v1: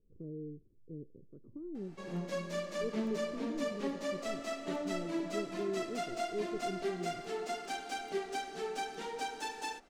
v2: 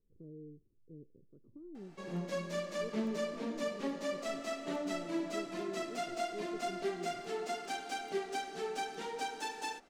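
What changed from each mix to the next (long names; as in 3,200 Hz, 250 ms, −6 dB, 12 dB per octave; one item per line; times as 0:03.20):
speech −6.5 dB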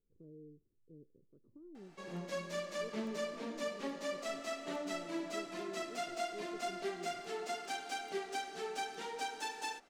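master: add low-shelf EQ 450 Hz −6.5 dB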